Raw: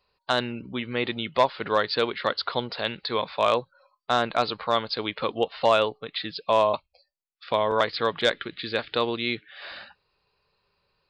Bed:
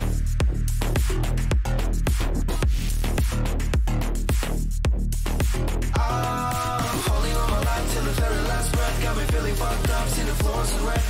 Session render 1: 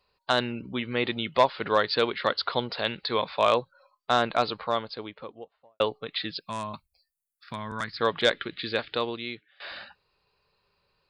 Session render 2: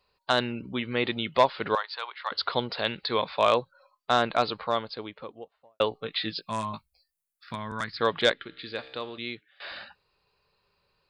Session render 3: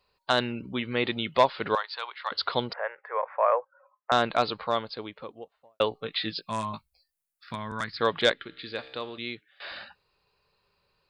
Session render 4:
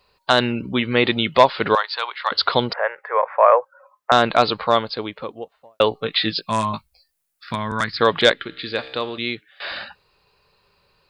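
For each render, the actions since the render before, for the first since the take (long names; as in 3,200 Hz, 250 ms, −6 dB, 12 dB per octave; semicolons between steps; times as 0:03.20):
0:04.18–0:05.80: fade out and dull; 0:06.39–0:08.01: drawn EQ curve 210 Hz 0 dB, 520 Hz −22 dB, 1,600 Hz −3 dB, 3,100 Hz −14 dB, 9,500 Hz +10 dB; 0:08.66–0:09.60: fade out, to −21 dB
0:01.75–0:02.32: four-pole ladder high-pass 780 Hz, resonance 50%; 0:05.90–0:07.55: double-tracking delay 18 ms −6 dB; 0:08.33–0:09.18: tuned comb filter 65 Hz, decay 1.3 s
0:02.73–0:04.12: elliptic band-pass filter 510–1,900 Hz
level +10 dB; brickwall limiter −2 dBFS, peak gain reduction 2 dB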